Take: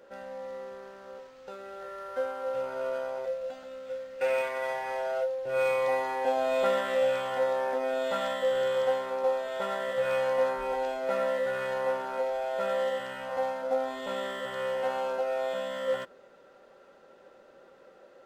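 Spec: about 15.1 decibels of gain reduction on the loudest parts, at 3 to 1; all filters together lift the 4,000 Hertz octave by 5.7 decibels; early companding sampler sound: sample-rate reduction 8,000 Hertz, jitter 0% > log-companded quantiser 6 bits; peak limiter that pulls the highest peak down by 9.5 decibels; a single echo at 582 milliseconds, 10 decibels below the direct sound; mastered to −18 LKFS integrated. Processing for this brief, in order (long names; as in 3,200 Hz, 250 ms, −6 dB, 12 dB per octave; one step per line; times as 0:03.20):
parametric band 4,000 Hz +7.5 dB
downward compressor 3 to 1, threshold −44 dBFS
brickwall limiter −40 dBFS
single-tap delay 582 ms −10 dB
sample-rate reduction 8,000 Hz, jitter 0%
log-companded quantiser 6 bits
level +29 dB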